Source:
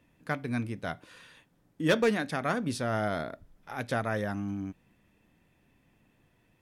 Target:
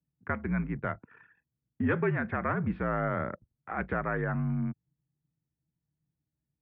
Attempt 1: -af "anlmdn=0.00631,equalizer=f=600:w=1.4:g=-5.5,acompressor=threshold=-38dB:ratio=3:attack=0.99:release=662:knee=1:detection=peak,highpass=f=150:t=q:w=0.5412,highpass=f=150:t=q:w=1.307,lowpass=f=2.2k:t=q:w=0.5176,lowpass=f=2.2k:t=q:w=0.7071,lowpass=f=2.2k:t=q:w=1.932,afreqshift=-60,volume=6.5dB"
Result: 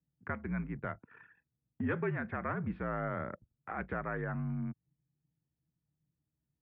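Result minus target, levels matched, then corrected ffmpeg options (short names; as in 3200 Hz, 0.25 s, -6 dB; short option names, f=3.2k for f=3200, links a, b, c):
compressor: peak gain reduction +6 dB
-af "anlmdn=0.00631,equalizer=f=600:w=1.4:g=-5.5,acompressor=threshold=-29dB:ratio=3:attack=0.99:release=662:knee=1:detection=peak,highpass=f=150:t=q:w=0.5412,highpass=f=150:t=q:w=1.307,lowpass=f=2.2k:t=q:w=0.5176,lowpass=f=2.2k:t=q:w=0.7071,lowpass=f=2.2k:t=q:w=1.932,afreqshift=-60,volume=6.5dB"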